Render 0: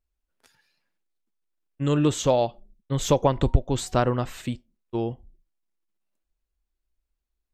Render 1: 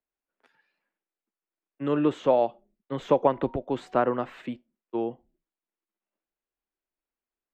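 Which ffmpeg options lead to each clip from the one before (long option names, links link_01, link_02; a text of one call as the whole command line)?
ffmpeg -i in.wav -filter_complex "[0:a]acrossover=split=200 2900:gain=0.0631 1 0.0631[link_01][link_02][link_03];[link_01][link_02][link_03]amix=inputs=3:normalize=0,acrossover=split=150|2600[link_04][link_05][link_06];[link_06]alimiter=level_in=18.5dB:limit=-24dB:level=0:latency=1:release=27,volume=-18.5dB[link_07];[link_04][link_05][link_07]amix=inputs=3:normalize=0" out.wav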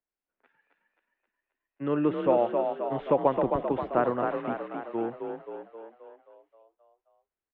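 ffmpeg -i in.wav -filter_complex "[0:a]lowpass=frequency=2800:width=0.5412,lowpass=frequency=2800:width=1.3066,asplit=2[link_01][link_02];[link_02]asplit=8[link_03][link_04][link_05][link_06][link_07][link_08][link_09][link_10];[link_03]adelay=265,afreqshift=35,volume=-5dB[link_11];[link_04]adelay=530,afreqshift=70,volume=-9.7dB[link_12];[link_05]adelay=795,afreqshift=105,volume=-14.5dB[link_13];[link_06]adelay=1060,afreqshift=140,volume=-19.2dB[link_14];[link_07]adelay=1325,afreqshift=175,volume=-23.9dB[link_15];[link_08]adelay=1590,afreqshift=210,volume=-28.7dB[link_16];[link_09]adelay=1855,afreqshift=245,volume=-33.4dB[link_17];[link_10]adelay=2120,afreqshift=280,volume=-38.1dB[link_18];[link_11][link_12][link_13][link_14][link_15][link_16][link_17][link_18]amix=inputs=8:normalize=0[link_19];[link_01][link_19]amix=inputs=2:normalize=0,volume=-2dB" out.wav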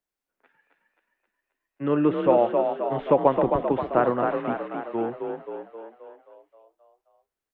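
ffmpeg -i in.wav -af "flanger=delay=5.4:depth=2:regen=-80:speed=1.7:shape=sinusoidal,volume=8.5dB" out.wav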